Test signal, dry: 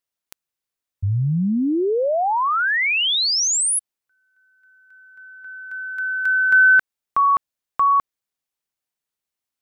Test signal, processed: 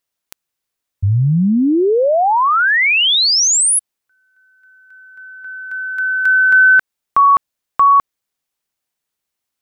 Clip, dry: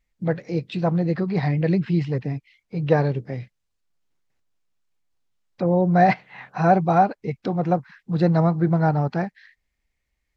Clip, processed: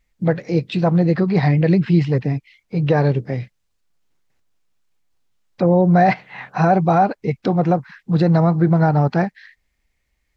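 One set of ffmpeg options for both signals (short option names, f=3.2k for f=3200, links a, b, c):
-af "alimiter=limit=-12dB:level=0:latency=1:release=84,volume=6.5dB"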